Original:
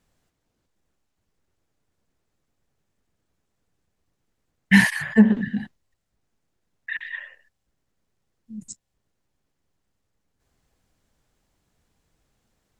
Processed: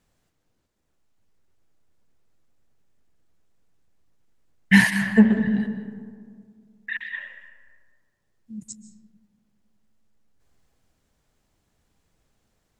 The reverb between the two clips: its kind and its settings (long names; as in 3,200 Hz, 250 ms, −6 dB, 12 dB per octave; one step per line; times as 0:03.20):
comb and all-pass reverb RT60 2 s, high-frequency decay 0.35×, pre-delay 105 ms, DRR 10 dB